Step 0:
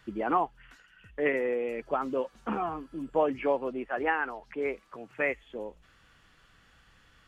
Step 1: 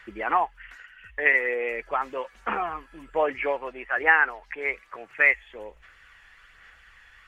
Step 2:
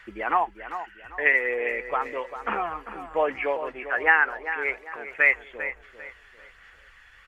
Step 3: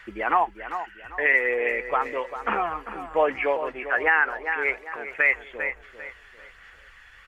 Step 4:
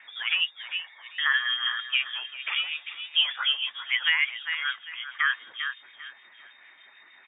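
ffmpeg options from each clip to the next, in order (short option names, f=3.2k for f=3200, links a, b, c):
-af "equalizer=f=125:t=o:w=1:g=-11,equalizer=f=250:t=o:w=1:g=-11,equalizer=f=2k:t=o:w=1:g=12,equalizer=f=4k:t=o:w=1:g=-3,aphaser=in_gain=1:out_gain=1:delay=1.2:decay=0.3:speed=1.2:type=sinusoidal,volume=2dB"
-filter_complex "[0:a]asplit=2[a][b];[b]adelay=396,lowpass=f=2.8k:p=1,volume=-10.5dB,asplit=2[c][d];[d]adelay=396,lowpass=f=2.8k:p=1,volume=0.36,asplit=2[e][f];[f]adelay=396,lowpass=f=2.8k:p=1,volume=0.36,asplit=2[g][h];[h]adelay=396,lowpass=f=2.8k:p=1,volume=0.36[i];[a][c][e][g][i]amix=inputs=5:normalize=0"
-af "alimiter=level_in=11dB:limit=-1dB:release=50:level=0:latency=1,volume=-8.5dB"
-filter_complex "[0:a]acrossover=split=1800[a][b];[a]aeval=exprs='val(0)*(1-0.7/2+0.7/2*cos(2*PI*6.6*n/s))':c=same[c];[b]aeval=exprs='val(0)*(1-0.7/2-0.7/2*cos(2*PI*6.6*n/s))':c=same[d];[c][d]amix=inputs=2:normalize=0,lowpass=f=3.1k:t=q:w=0.5098,lowpass=f=3.1k:t=q:w=0.6013,lowpass=f=3.1k:t=q:w=0.9,lowpass=f=3.1k:t=q:w=2.563,afreqshift=-3700"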